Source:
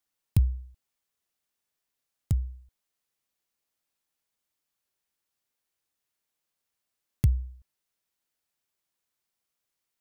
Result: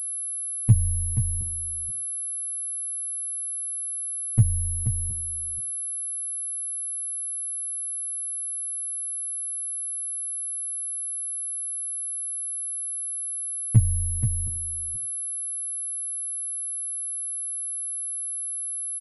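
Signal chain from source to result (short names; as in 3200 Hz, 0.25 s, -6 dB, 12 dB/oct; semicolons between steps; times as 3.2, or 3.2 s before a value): per-bin compression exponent 0.4; gate -38 dBFS, range -42 dB; high shelf 2000 Hz -9 dB; comb 6.9 ms, depth 43%; granular stretch 1.9×, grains 38 ms; air absorption 390 m; on a send: echo 0.48 s -9 dB; on the sum: pulse-width modulation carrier 11000 Hz; gain +3.5 dB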